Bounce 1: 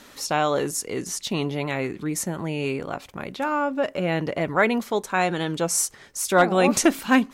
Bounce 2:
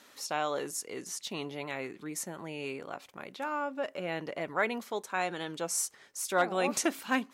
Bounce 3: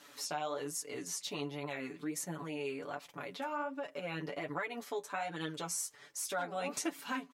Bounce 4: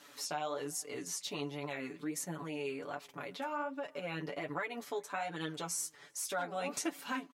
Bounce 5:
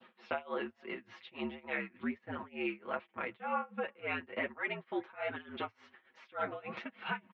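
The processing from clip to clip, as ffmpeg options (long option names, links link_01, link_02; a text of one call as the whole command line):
ffmpeg -i in.wav -af "highpass=frequency=380:poles=1,volume=-8.5dB" out.wav
ffmpeg -i in.wav -af "aecho=1:1:6.9:0.95,acompressor=threshold=-35dB:ratio=3,flanger=delay=5.8:depth=6.4:regen=35:speed=1.3:shape=sinusoidal,volume=2dB" out.wav
ffmpeg -i in.wav -filter_complex "[0:a]asplit=2[link_01][link_02];[link_02]adelay=379,volume=-29dB,highshelf=frequency=4000:gain=-8.53[link_03];[link_01][link_03]amix=inputs=2:normalize=0" out.wav
ffmpeg -i in.wav -af "tremolo=f=3.4:d=0.95,adynamicequalizer=threshold=0.00158:dfrequency=1900:dqfactor=0.81:tfrequency=1900:tqfactor=0.81:attack=5:release=100:ratio=0.375:range=3:mode=boostabove:tftype=bell,highpass=frequency=210:width_type=q:width=0.5412,highpass=frequency=210:width_type=q:width=1.307,lowpass=frequency=3200:width_type=q:width=0.5176,lowpass=frequency=3200:width_type=q:width=0.7071,lowpass=frequency=3200:width_type=q:width=1.932,afreqshift=-65,volume=3dB" out.wav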